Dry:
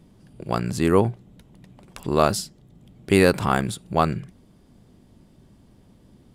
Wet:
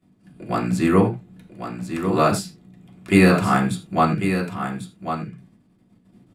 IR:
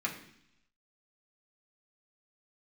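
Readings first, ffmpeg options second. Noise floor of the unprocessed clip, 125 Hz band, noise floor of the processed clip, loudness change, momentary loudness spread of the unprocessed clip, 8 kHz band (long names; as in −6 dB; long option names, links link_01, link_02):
−55 dBFS, +3.5 dB, −59 dBFS, +1.5 dB, 16 LU, −1.0 dB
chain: -filter_complex "[0:a]agate=range=-15dB:threshold=-51dB:ratio=16:detection=peak,aecho=1:1:1096:0.376[link_01];[1:a]atrim=start_sample=2205,atrim=end_sample=4410[link_02];[link_01][link_02]afir=irnorm=-1:irlink=0,volume=-2dB"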